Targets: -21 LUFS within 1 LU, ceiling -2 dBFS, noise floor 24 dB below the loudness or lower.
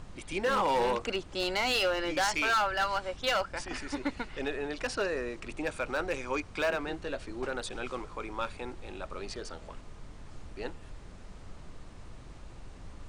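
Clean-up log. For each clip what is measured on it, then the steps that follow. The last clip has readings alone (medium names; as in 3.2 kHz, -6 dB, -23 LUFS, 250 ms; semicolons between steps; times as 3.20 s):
clipped samples 1.2%; clipping level -23.0 dBFS; noise floor -48 dBFS; noise floor target -56 dBFS; loudness -32.0 LUFS; peak level -23.0 dBFS; loudness target -21.0 LUFS
-> clip repair -23 dBFS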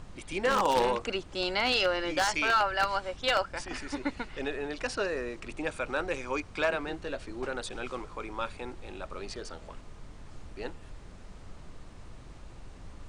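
clipped samples 0.0%; noise floor -48 dBFS; noise floor target -55 dBFS
-> noise print and reduce 7 dB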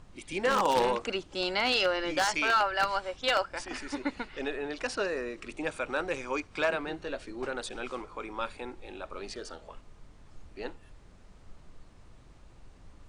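noise floor -55 dBFS; loudness -31.0 LUFS; peak level -14.0 dBFS; loudness target -21.0 LUFS
-> trim +10 dB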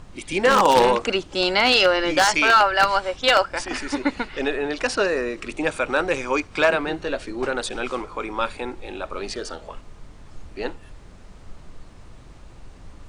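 loudness -21.0 LUFS; peak level -4.0 dBFS; noise floor -45 dBFS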